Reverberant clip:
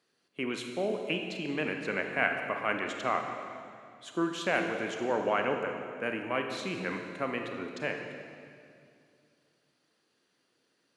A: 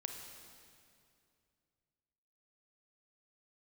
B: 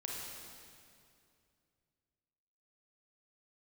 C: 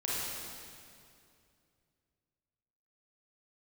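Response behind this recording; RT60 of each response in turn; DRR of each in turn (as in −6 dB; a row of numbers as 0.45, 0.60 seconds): A; 2.4, 2.4, 2.4 seconds; 3.5, −3.0, −7.5 decibels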